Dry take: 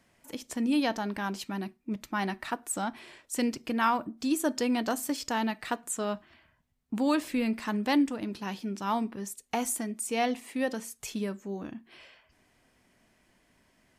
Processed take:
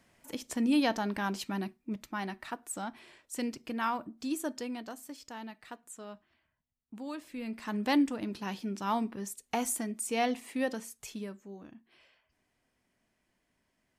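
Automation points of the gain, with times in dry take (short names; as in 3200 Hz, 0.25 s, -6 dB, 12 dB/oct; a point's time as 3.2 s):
1.62 s 0 dB
2.23 s -6 dB
4.38 s -6 dB
4.95 s -14 dB
7.26 s -14 dB
7.85 s -1.5 dB
10.61 s -1.5 dB
11.62 s -11 dB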